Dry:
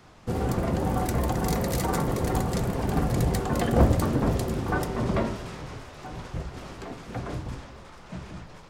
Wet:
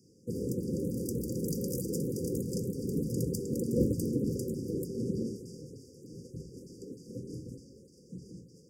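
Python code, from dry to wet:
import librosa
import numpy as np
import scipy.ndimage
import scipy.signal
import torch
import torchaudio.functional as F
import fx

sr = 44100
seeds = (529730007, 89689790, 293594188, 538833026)

y = scipy.signal.sosfilt(scipy.signal.butter(2, 150.0, 'highpass', fs=sr, output='sos'), x)
y = fx.filter_lfo_notch(y, sr, shape='saw_up', hz=3.3, low_hz=510.0, high_hz=6200.0, q=0.81)
y = fx.brickwall_bandstop(y, sr, low_hz=540.0, high_hz=4600.0)
y = y * 10.0 ** (-3.5 / 20.0)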